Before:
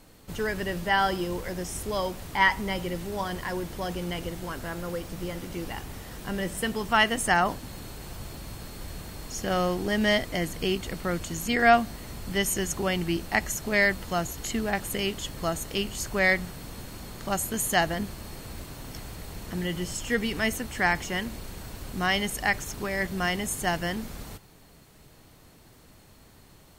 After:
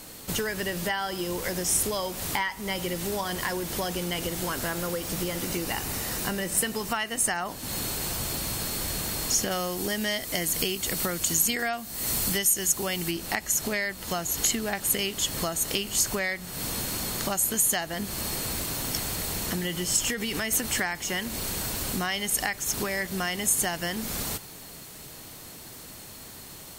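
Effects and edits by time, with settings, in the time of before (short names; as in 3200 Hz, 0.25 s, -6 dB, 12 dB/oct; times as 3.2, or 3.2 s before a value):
5.43–7.4 notch 3300 Hz
9.51–13.11 high shelf 6100 Hz +8.5 dB
20.03–20.81 compressor, threshold -29 dBFS
whole clip: low shelf 88 Hz -9 dB; compressor 16:1, threshold -35 dBFS; high shelf 3800 Hz +10 dB; gain +8 dB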